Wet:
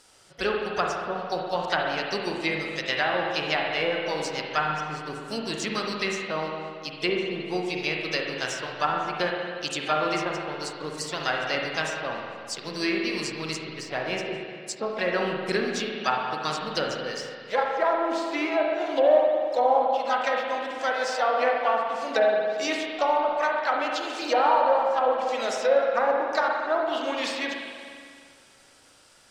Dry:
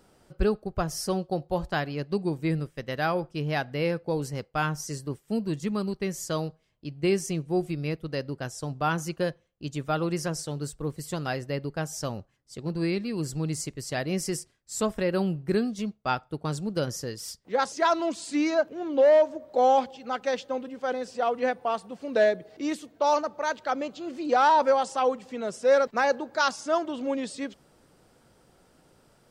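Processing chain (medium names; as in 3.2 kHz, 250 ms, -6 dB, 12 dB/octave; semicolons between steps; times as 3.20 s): frequency weighting ITU-R 468; low-pass that closes with the level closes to 670 Hz, closed at -22 dBFS; in parallel at -4.5 dB: hysteresis with a dead band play -46 dBFS; on the sum: harmony voices +4 st -12 dB; spring tank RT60 2.1 s, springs 39/57 ms, chirp 35 ms, DRR -0.5 dB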